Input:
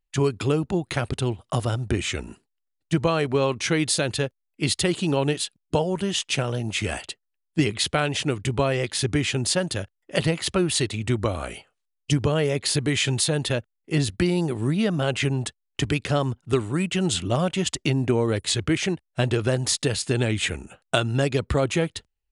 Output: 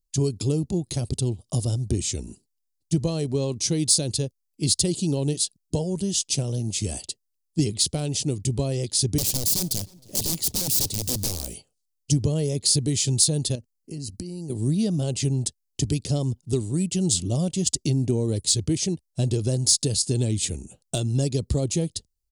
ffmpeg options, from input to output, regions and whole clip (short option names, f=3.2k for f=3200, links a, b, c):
-filter_complex "[0:a]asettb=1/sr,asplit=3[a][b][c];[a]atrim=end=9.184[d];[b]atrim=start=9.18:end=11.54,asetpts=PTS-STARTPTS,afade=t=in:d=0.004:c=qsin,afade=t=out:st=2.356:d=0.004:c=qsin,aeval=exprs='(mod(11.2*val(0)+1,2)-1)/11.2':c=same,asplit=2[e][f];[f]adelay=312,lowpass=f=3.4k:p=1,volume=-22dB,asplit=2[g][h];[h]adelay=312,lowpass=f=3.4k:p=1,volume=0.42,asplit=2[i][j];[j]adelay=312,lowpass=f=3.4k:p=1,volume=0.42[k];[e][g][i][k]amix=inputs=4:normalize=0,atrim=end_sample=104076,acrusher=bits=4:mode=log:mix=0:aa=0.000001[l];[c]atrim=start=11.536[m];[d][l]acrossfade=d=0.004:c1=hsin:c2=qsin[n];[n][m]acrossfade=d=0.004:c1=qsin:c2=hsin,asettb=1/sr,asplit=3[o][p][q];[o]atrim=end=13.554[r];[p]atrim=start=13.55:end=14.5,asetpts=PTS-STARTPTS,afade=t=in:d=0.004:c=qsin,afade=t=out:st=0.946:d=0.004:c=qsin,acompressor=threshold=-31dB:ratio=12:attack=3.2:release=140:knee=1:detection=peak,asuperstop=centerf=3500:order=8:qfactor=4.9,equalizer=f=250:t=o:w=0.4:g=5[s];[q]atrim=start=14.496[t];[r][s]acrossfade=d=0.004:c1=hsin:c2=qsin[u];[u][t]acrossfade=d=0.004:c1=qsin:c2=hsin,bass=f=250:g=0,treble=f=4k:g=3,acontrast=55,firequalizer=gain_entry='entry(150,0);entry(1400,-25);entry(4700,2)':delay=0.05:min_phase=1,volume=-4.5dB"